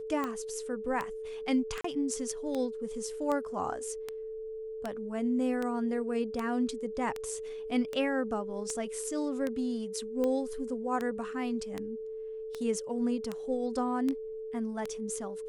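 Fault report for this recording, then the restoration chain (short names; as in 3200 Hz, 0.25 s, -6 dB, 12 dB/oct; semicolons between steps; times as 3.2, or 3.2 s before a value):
tick 78 rpm -20 dBFS
tone 440 Hz -37 dBFS
1.81–1.84 gap 34 ms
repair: de-click; notch 440 Hz, Q 30; interpolate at 1.81, 34 ms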